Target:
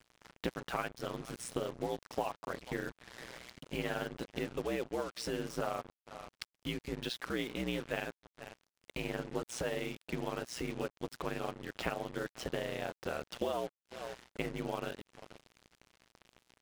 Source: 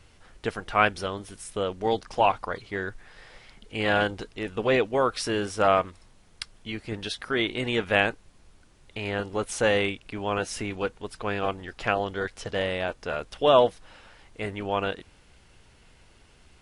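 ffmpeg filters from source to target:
-filter_complex "[0:a]highpass=160,lowpass=7900,lowshelf=f=310:g=9.5,asplit=2[s0][s1];[s1]adelay=472.3,volume=0.0355,highshelf=f=4000:g=-10.6[s2];[s0][s2]amix=inputs=2:normalize=0,acompressor=threshold=0.0178:ratio=6,aeval=exprs='val(0)*sin(2*PI*61*n/s)':c=same,acrusher=bits=7:mix=0:aa=0.5,volume=1.41"

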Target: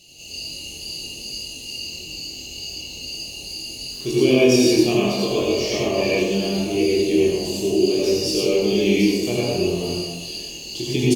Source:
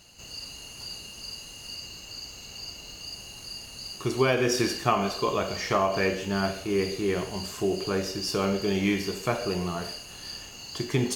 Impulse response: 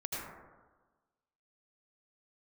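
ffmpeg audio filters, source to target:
-filter_complex "[0:a]firequalizer=gain_entry='entry(110,0);entry(320,8);entry(1400,-20);entry(2600,10);entry(6400,8)':delay=0.05:min_phase=1[s0];[1:a]atrim=start_sample=2205[s1];[s0][s1]afir=irnorm=-1:irlink=0,asettb=1/sr,asplit=3[s2][s3][s4];[s2]atrim=end=3.914[s5];[s3]atrim=start=3.91:end=5.48,asetpts=PTS-STARTPTS,afade=t=in:d=0.004:c=qsin,afade=t=out:st=1.566:d=0.004:c=qsin,aeval=exprs='sgn(val(0))*max(abs(val(0))-0.00668,0)':c=same[s6];[s4]atrim=start=5.476[s7];[s5][s6]acrossfade=d=0.004:c1=hsin:c2=qsin[s8];[s8][s7]acrossfade=d=0.004:c1=qsin:c2=hsin,flanger=delay=22.5:depth=2.7:speed=0.71,volume=1.5" -ar 44100 -c:a libvorbis -b:a 96k

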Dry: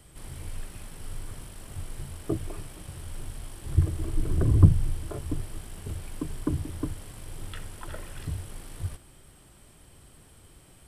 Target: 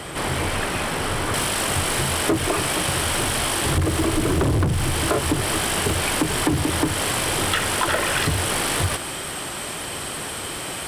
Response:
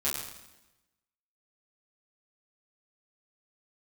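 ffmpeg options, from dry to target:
-filter_complex "[0:a]asetnsamples=n=441:p=0,asendcmd='1.34 lowpass f 4900',asplit=2[s0][s1];[s1]highpass=f=720:p=1,volume=79.4,asoftclip=type=tanh:threshold=0.75[s2];[s0][s2]amix=inputs=2:normalize=0,lowpass=f=1700:p=1,volume=0.501,acompressor=threshold=0.126:ratio=6"

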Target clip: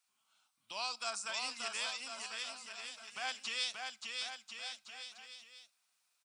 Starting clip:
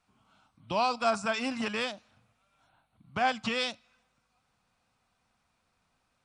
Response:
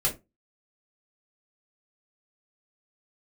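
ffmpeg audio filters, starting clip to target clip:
-filter_complex "[0:a]aderivative,bandreject=f=57.16:t=h:w=4,bandreject=f=114.32:t=h:w=4,bandreject=f=171.48:t=h:w=4,asplit=2[s0][s1];[s1]aecho=0:1:580|1044|1415|1712|1950:0.631|0.398|0.251|0.158|0.1[s2];[s0][s2]amix=inputs=2:normalize=0,volume=1.33"

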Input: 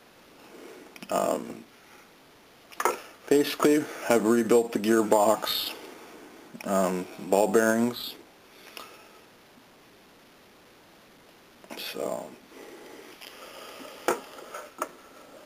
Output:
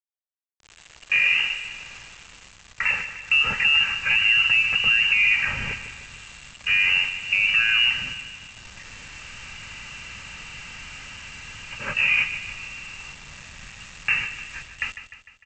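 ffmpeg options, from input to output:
-filter_complex "[0:a]aeval=exprs='val(0)+0.5*0.02*sgn(val(0))':c=same,agate=range=0.158:threshold=0.0251:ratio=16:detection=peak,equalizer=f=2400:t=o:w=0.29:g=-7.5,aecho=1:1:2.7:0.54,lowpass=f=2600:t=q:w=0.5098,lowpass=f=2600:t=q:w=0.6013,lowpass=f=2600:t=q:w=0.9,lowpass=f=2600:t=q:w=2.563,afreqshift=-3100,acrossover=split=110[s0][s1];[s1]dynaudnorm=f=300:g=7:m=5.01[s2];[s0][s2]amix=inputs=2:normalize=0,alimiter=limit=0.266:level=0:latency=1:release=28,aresample=16000,acrusher=bits=6:mix=0:aa=0.000001,aresample=44100,aecho=1:1:151|302|453|604|755|906:0.266|0.146|0.0805|0.0443|0.0243|0.0134,asubboost=boost=8:cutoff=140"

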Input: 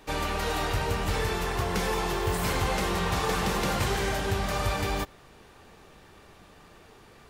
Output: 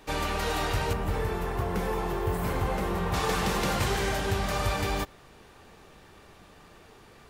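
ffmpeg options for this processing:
-filter_complex "[0:a]asettb=1/sr,asplit=3[s0][s1][s2];[s0]atrim=end=0.934[s3];[s1]atrim=start=0.93:end=3.14,asetpts=PTS-STARTPTS,afade=t=in:d=0.004:c=qsin,afade=t=out:st=2.206:d=0.004:c=qsin,equalizer=f=5300:w=0.4:g=-12[s4];[s2]atrim=start=3.136[s5];[s3][s4]acrossfade=d=0.004:c1=hsin:c2=qsin[s6];[s6][s5]acrossfade=d=0.004:c1=qsin:c2=hsin"

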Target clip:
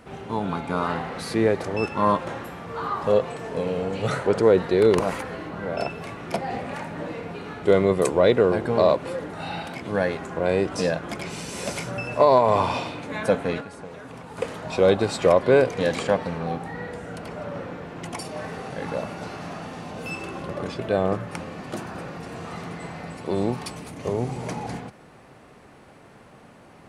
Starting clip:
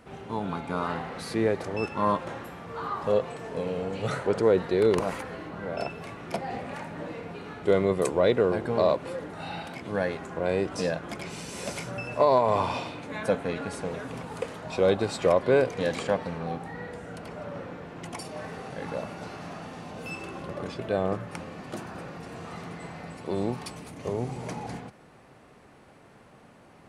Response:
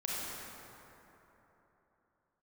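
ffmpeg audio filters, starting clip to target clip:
-filter_complex "[0:a]asettb=1/sr,asplit=3[s0][s1][s2];[s0]atrim=end=13.604[s3];[s1]atrim=start=13.6:end=14.38,asetpts=PTS-STARTPTS,afade=t=in:d=0.004:c=qsin,afade=t=out:st=0.776:d=0.004:c=qsin,acrossover=split=680|1700[s4][s5][s6];[s4]acompressor=threshold=0.00562:ratio=4[s7];[s5]acompressor=threshold=0.00316:ratio=4[s8];[s6]acompressor=threshold=0.00141:ratio=4[s9];[s7][s8][s9]amix=inputs=3:normalize=0[s10];[s2]atrim=start=14.376[s11];[s3][s10]acrossfade=d=0.004:c1=hsin:c2=qsin[s12];[s12][s11]acrossfade=d=0.004:c1=qsin:c2=hsin,volume=1.68"

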